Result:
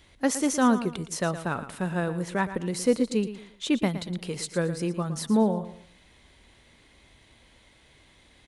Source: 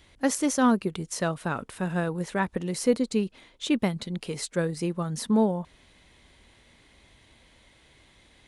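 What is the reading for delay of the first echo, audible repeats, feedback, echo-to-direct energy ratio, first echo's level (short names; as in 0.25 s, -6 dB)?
0.115 s, 3, 31%, -12.0 dB, -12.5 dB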